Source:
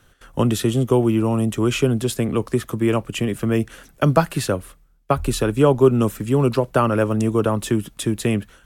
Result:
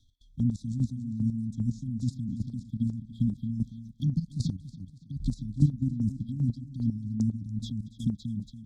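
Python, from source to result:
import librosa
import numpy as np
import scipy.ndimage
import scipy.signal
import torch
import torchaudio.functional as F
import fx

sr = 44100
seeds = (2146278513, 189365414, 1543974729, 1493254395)

y = fx.env_phaser(x, sr, low_hz=170.0, high_hz=3300.0, full_db=-18.0)
y = fx.level_steps(y, sr, step_db=13)
y = fx.air_absorb(y, sr, metres=210.0)
y = fx.transient(y, sr, attack_db=2, sustain_db=-2)
y = fx.brickwall_bandstop(y, sr, low_hz=280.0, high_hz=3200.0)
y = fx.high_shelf(y, sr, hz=4400.0, db=9.5)
y = fx.echo_feedback(y, sr, ms=283, feedback_pct=42, wet_db=-11.0)
y = fx.chopper(y, sr, hz=2.5, depth_pct=60, duty_pct=25)
y = y * librosa.db_to_amplitude(3.0)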